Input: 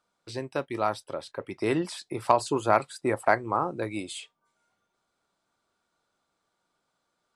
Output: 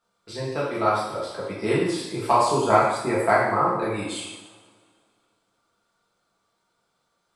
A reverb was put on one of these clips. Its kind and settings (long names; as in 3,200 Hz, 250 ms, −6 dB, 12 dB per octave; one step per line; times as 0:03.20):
coupled-rooms reverb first 0.88 s, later 2.3 s, from −19 dB, DRR −7.5 dB
level −3 dB